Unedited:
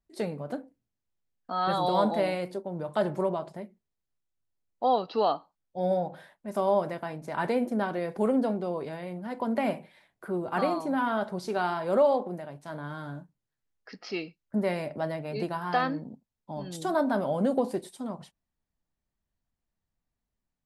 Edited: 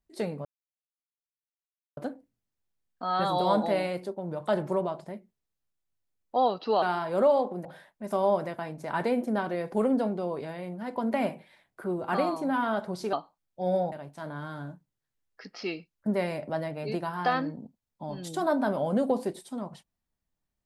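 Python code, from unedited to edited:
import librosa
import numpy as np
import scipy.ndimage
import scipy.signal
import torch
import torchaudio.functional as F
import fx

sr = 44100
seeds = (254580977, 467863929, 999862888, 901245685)

y = fx.edit(x, sr, fx.insert_silence(at_s=0.45, length_s=1.52),
    fx.swap(start_s=5.3, length_s=0.79, other_s=11.57, other_length_s=0.83), tone=tone)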